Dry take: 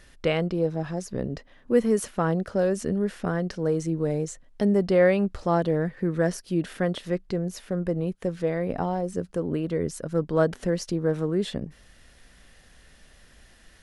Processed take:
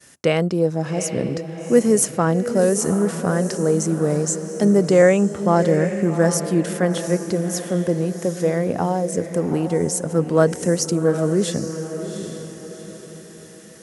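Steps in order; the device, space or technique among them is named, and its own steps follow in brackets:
0:05.02–0:05.56: Butterworth low-pass 3,600 Hz 48 dB per octave
budget condenser microphone (high-pass filter 100 Hz 24 dB per octave; high shelf with overshoot 5,100 Hz +8.5 dB, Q 1.5)
downward expander −52 dBFS
feedback delay with all-pass diffusion 770 ms, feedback 42%, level −9.5 dB
level +6 dB

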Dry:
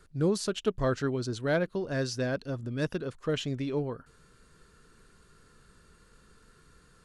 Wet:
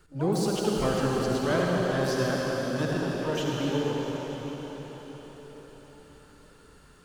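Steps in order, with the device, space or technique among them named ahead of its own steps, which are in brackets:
shimmer-style reverb (pitch-shifted copies added +12 semitones −10 dB; convolution reverb RT60 5.5 s, pre-delay 54 ms, DRR −3.5 dB)
level −1.5 dB

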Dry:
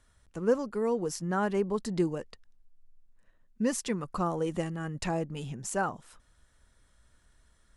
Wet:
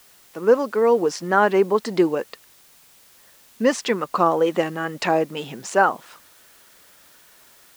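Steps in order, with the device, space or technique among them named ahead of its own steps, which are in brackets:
dictaphone (band-pass filter 360–4,300 Hz; automatic gain control gain up to 7.5 dB; tape wow and flutter; white noise bed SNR 30 dB)
level +6.5 dB

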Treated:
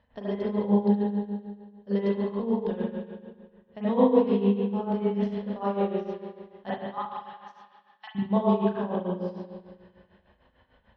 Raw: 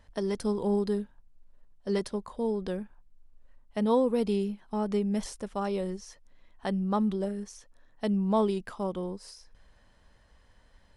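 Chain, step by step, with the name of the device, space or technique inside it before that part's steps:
0:06.70–0:08.15: Butterworth high-pass 780 Hz 96 dB per octave
combo amplifier with spring reverb and tremolo (spring reverb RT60 1.7 s, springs 35/39 ms, chirp 35 ms, DRR −8.5 dB; amplitude tremolo 6.7 Hz, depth 75%; loudspeaker in its box 81–3,600 Hz, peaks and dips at 320 Hz −6 dB, 1,300 Hz −5 dB, 2,200 Hz −5 dB)
level −2 dB

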